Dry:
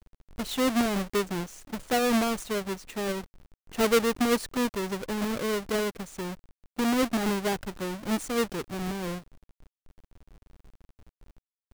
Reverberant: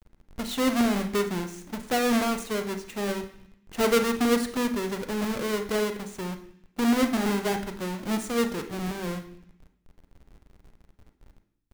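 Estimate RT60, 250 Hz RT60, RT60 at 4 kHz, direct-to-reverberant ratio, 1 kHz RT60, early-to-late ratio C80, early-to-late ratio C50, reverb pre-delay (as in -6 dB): 0.60 s, 0.95 s, 0.80 s, 6.5 dB, 0.65 s, 14.0 dB, 11.0 dB, 33 ms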